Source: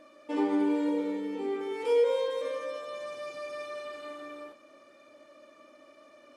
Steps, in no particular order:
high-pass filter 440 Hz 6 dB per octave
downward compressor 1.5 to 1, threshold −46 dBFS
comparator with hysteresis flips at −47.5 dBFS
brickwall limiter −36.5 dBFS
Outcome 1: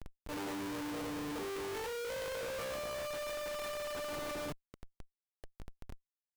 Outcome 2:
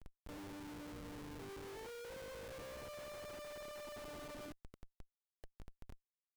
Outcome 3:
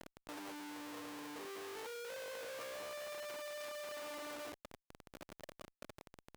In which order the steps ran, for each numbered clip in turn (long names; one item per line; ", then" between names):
high-pass filter, then comparator with hysteresis, then downward compressor, then brickwall limiter
brickwall limiter, then downward compressor, then high-pass filter, then comparator with hysteresis
comparator with hysteresis, then high-pass filter, then brickwall limiter, then downward compressor